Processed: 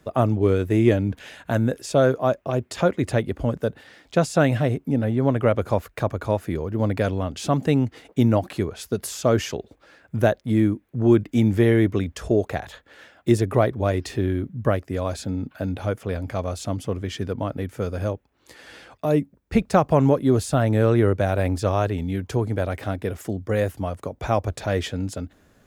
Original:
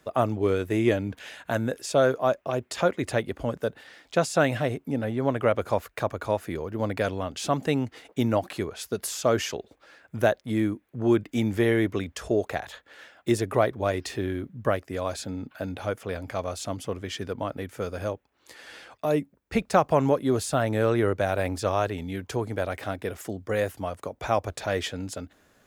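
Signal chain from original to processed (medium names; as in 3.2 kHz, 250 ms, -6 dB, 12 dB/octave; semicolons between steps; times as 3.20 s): bass shelf 320 Hz +10 dB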